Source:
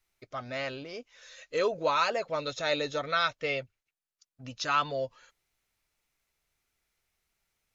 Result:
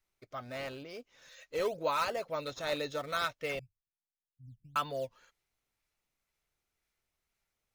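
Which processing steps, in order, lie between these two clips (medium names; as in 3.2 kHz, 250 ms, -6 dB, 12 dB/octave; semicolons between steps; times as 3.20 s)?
3.59–4.76 s: inverse Chebyshev low-pass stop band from 1 kHz, stop band 80 dB; in parallel at -8.5 dB: decimation with a swept rate 10×, swing 160% 2 Hz; on the sum: trim -7 dB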